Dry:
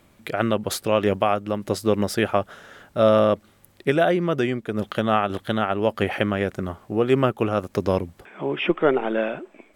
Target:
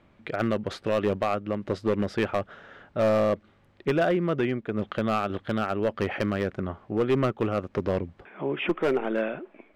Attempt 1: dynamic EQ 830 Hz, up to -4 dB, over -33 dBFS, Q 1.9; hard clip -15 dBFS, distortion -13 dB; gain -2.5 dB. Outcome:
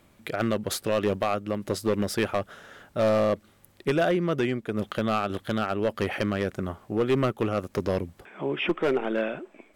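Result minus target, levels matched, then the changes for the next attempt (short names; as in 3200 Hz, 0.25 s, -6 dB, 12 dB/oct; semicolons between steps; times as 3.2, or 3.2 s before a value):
4000 Hz band +3.5 dB
add after dynamic EQ: LPF 2900 Hz 12 dB/oct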